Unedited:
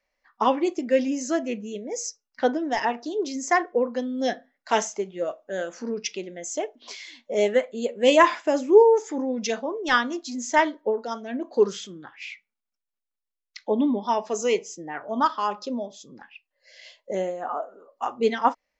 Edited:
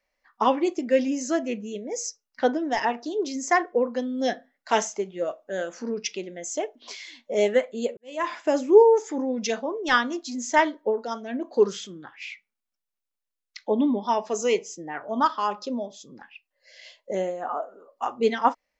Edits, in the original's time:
7.97–8.46 fade in quadratic

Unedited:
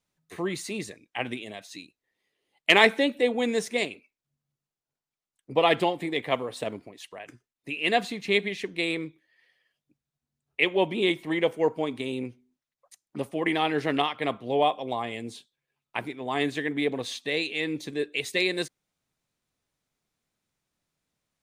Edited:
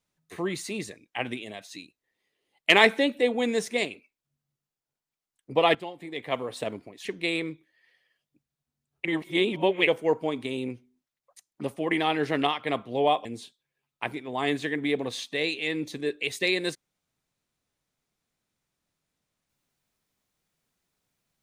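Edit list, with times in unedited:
5.75–6.47 fade in quadratic, from -13.5 dB
7.05–8.6 cut
10.6–11.42 reverse
14.8–15.18 cut

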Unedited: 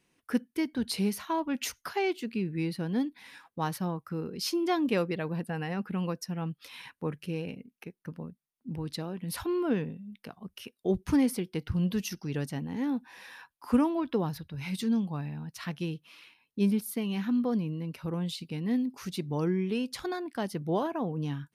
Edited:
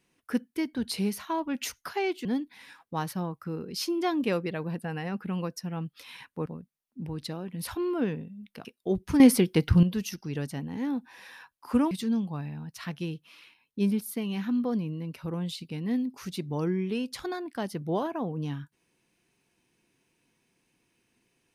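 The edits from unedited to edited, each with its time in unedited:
2.25–2.9 cut
7.11–8.15 cut
10.34–10.64 cut
11.19–11.82 gain +10 dB
13.9–14.71 cut

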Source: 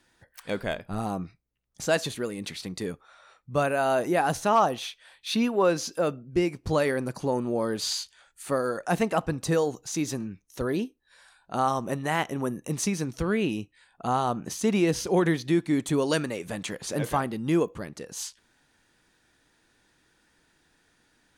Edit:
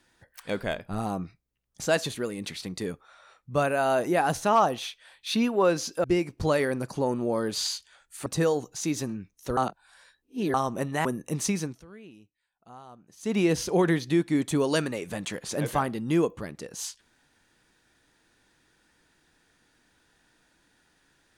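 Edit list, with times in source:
6.04–6.3 cut
8.52–9.37 cut
10.68–11.65 reverse
12.16–12.43 cut
12.97–14.78 dip -21.5 dB, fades 0.24 s

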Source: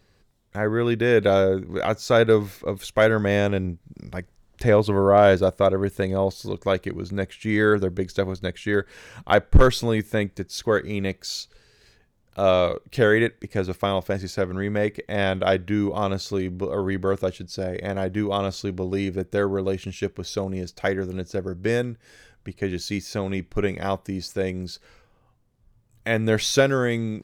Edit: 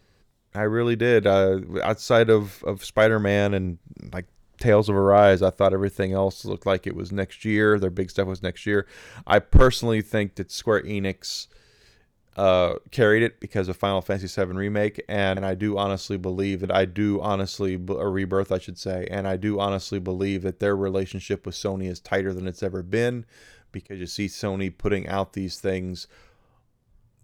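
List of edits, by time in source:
17.91–19.19 copy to 15.37
22.59–22.87 fade in, from -20 dB

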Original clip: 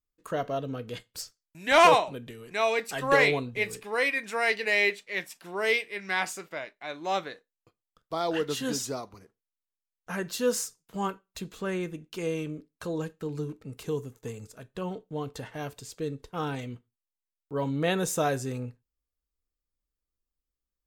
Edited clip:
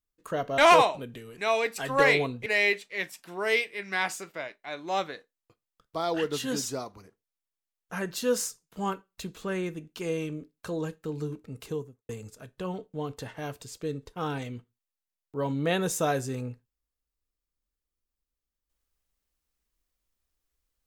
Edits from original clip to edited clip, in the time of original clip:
0.58–1.71 cut
3.59–4.63 cut
13.78–14.26 studio fade out

